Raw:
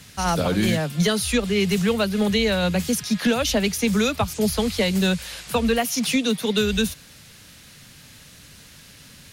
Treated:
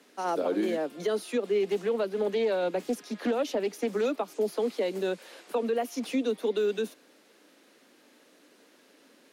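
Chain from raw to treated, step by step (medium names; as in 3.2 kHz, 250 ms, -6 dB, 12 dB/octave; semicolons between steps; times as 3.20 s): steep high-pass 300 Hz 36 dB/octave; tilt shelf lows +8 dB, about 670 Hz; peak limiter -15.5 dBFS, peak gain reduction 5.5 dB; treble shelf 2.4 kHz -8 dB; 1.63–4.06 s: loudspeaker Doppler distortion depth 0.2 ms; trim -3 dB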